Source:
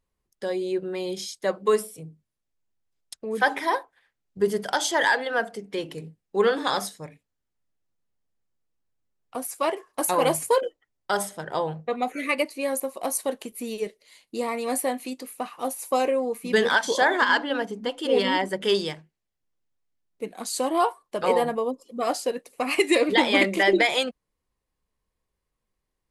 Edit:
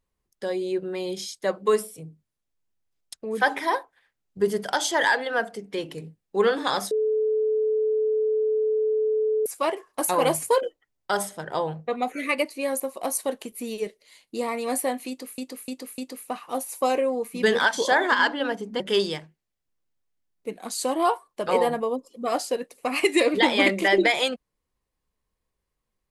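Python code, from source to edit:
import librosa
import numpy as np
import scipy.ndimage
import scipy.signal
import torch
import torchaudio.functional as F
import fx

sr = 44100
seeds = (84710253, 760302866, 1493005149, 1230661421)

y = fx.edit(x, sr, fx.bleep(start_s=6.91, length_s=2.55, hz=433.0, db=-20.0),
    fx.repeat(start_s=15.08, length_s=0.3, count=4),
    fx.cut(start_s=17.9, length_s=0.65), tone=tone)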